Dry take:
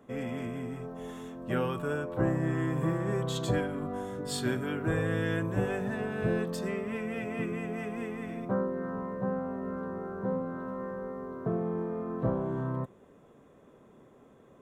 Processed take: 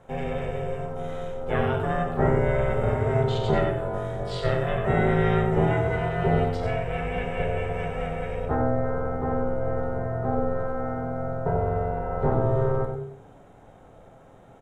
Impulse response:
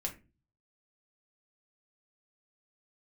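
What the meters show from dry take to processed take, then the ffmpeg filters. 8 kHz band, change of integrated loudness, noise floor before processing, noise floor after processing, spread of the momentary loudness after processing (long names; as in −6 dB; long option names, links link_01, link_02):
can't be measured, +7.0 dB, −58 dBFS, −50 dBFS, 8 LU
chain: -filter_complex "[0:a]asplit=2[link_01][link_02];[1:a]atrim=start_sample=2205,asetrate=22932,aresample=44100[link_03];[link_02][link_03]afir=irnorm=-1:irlink=0,volume=0.5dB[link_04];[link_01][link_04]amix=inputs=2:normalize=0,acrossover=split=4100[link_05][link_06];[link_06]acompressor=threshold=-60dB:ratio=4:attack=1:release=60[link_07];[link_05][link_07]amix=inputs=2:normalize=0,aeval=exprs='val(0)*sin(2*PI*270*n/s)':channel_layout=same,aecho=1:1:93:0.422"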